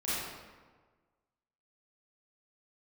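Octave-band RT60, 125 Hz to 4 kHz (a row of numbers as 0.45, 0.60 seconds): 1.6, 1.5, 1.5, 1.4, 1.2, 0.90 seconds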